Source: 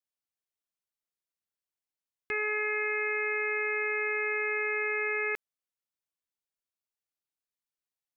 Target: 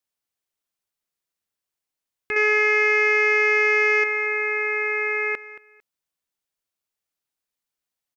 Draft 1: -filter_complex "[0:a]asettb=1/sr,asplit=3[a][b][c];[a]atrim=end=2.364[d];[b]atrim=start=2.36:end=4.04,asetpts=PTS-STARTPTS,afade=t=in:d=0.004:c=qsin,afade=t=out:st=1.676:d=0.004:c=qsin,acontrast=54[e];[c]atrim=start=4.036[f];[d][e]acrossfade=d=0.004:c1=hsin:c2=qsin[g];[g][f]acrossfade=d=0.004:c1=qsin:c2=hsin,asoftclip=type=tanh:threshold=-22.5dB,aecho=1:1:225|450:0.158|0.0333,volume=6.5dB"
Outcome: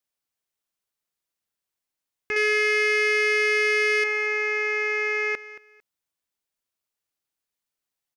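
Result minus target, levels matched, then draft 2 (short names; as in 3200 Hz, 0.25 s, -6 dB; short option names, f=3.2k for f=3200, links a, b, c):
soft clip: distortion +12 dB
-filter_complex "[0:a]asettb=1/sr,asplit=3[a][b][c];[a]atrim=end=2.364[d];[b]atrim=start=2.36:end=4.04,asetpts=PTS-STARTPTS,afade=t=in:d=0.004:c=qsin,afade=t=out:st=1.676:d=0.004:c=qsin,acontrast=54[e];[c]atrim=start=4.036[f];[d][e]acrossfade=d=0.004:c1=hsin:c2=qsin[g];[g][f]acrossfade=d=0.004:c1=qsin:c2=hsin,asoftclip=type=tanh:threshold=-14dB,aecho=1:1:225|450:0.158|0.0333,volume=6.5dB"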